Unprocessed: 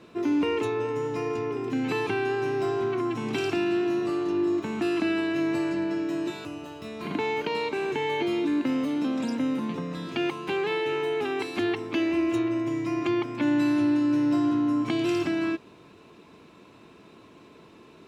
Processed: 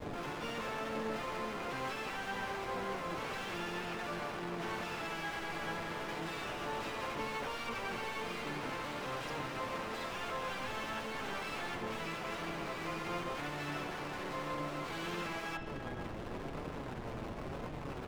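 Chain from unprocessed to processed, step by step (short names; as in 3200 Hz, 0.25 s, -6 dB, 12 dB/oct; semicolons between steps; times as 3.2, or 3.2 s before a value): Bessel high-pass 1500 Hz, order 2; high shelf 5700 Hz -3.5 dB; compressor 3:1, threshold -45 dBFS, peak gain reduction 10.5 dB; limiter -37.5 dBFS, peak gain reduction 9 dB; harmoniser +4 st -7 dB, +5 st -16 dB; Schmitt trigger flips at -55 dBFS; overdrive pedal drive 27 dB, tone 2200 Hz, clips at -42 dBFS; spring tank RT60 2.7 s, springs 52/58 ms, chirp 55 ms, DRR 5.5 dB; flange 0.96 Hz, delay 6.4 ms, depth 2.9 ms, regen -6%; harmoniser -12 st -2 dB, +3 st -15 dB, +12 st -13 dB; gain +7 dB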